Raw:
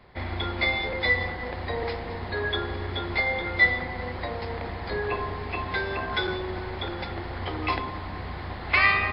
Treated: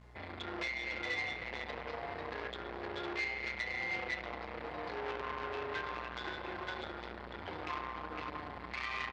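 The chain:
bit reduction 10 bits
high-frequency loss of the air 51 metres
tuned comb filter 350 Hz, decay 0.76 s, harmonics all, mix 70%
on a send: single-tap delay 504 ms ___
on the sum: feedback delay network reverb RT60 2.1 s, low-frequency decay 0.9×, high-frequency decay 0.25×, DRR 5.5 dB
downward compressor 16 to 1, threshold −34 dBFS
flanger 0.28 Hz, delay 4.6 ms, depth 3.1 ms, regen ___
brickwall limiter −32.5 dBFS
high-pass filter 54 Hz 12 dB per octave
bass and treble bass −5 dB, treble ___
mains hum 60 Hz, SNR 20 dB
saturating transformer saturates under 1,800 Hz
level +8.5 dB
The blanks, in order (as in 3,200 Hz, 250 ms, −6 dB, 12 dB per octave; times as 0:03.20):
−5.5 dB, +54%, −4 dB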